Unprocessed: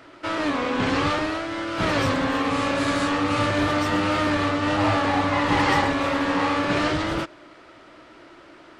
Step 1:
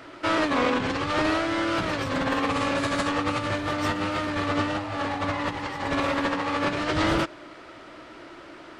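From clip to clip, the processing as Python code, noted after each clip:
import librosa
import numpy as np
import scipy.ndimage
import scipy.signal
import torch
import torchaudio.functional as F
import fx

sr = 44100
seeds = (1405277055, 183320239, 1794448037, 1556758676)

y = fx.over_compress(x, sr, threshold_db=-25.0, ratio=-0.5)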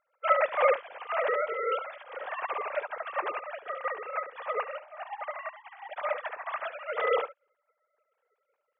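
y = fx.sine_speech(x, sr)
y = y + 10.0 ** (-7.0 / 20.0) * np.pad(y, (int(71 * sr / 1000.0), 0))[:len(y)]
y = fx.upward_expand(y, sr, threshold_db=-43.0, expansion=2.5)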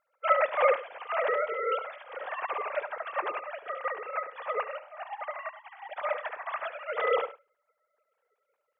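y = x + 10.0 ** (-17.5 / 20.0) * np.pad(x, (int(101 * sr / 1000.0), 0))[:len(x)]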